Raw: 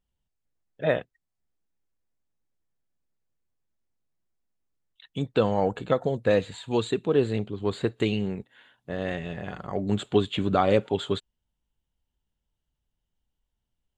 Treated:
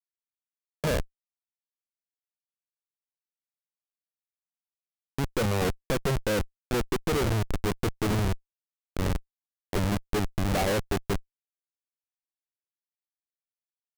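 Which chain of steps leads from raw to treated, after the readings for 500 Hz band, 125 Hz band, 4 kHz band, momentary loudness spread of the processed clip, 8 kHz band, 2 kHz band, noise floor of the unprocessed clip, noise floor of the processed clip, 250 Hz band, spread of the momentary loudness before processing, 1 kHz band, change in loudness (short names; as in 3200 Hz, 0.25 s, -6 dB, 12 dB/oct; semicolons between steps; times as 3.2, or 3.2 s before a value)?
-5.5 dB, +2.0 dB, -0.5 dB, 8 LU, +10.5 dB, +1.0 dB, -82 dBFS, under -85 dBFS, -3.0 dB, 10 LU, -2.5 dB, -2.5 dB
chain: polynomial smoothing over 65 samples; on a send: feedback echo 0.94 s, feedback 58%, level -16 dB; on the sum: Schmitt trigger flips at -27 dBFS; vibrato 2.1 Hz 40 cents; gain +6.5 dB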